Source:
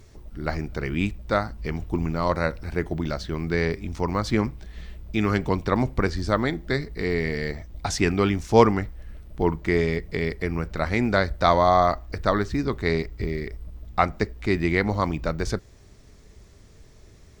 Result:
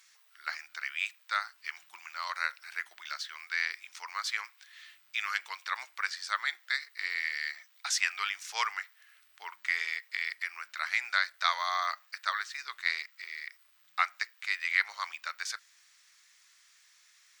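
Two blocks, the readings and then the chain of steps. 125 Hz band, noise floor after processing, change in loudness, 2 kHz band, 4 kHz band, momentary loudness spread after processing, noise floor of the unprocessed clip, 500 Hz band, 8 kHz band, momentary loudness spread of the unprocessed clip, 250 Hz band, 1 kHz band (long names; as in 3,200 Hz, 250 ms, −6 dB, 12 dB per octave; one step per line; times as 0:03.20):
below −40 dB, −64 dBFS, −8.5 dB, −0.5 dB, 0.0 dB, 12 LU, −50 dBFS, −32.0 dB, 0.0 dB, 11 LU, below −40 dB, −10.0 dB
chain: high-pass filter 1,400 Hz 24 dB per octave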